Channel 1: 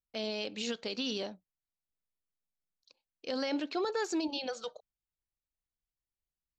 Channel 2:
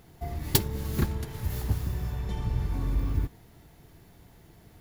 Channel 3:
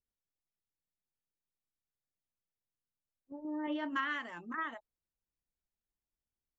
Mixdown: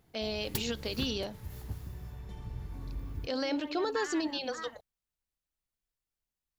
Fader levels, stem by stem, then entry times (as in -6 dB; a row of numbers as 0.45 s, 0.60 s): +1.0 dB, -12.0 dB, -6.0 dB; 0.00 s, 0.00 s, 0.00 s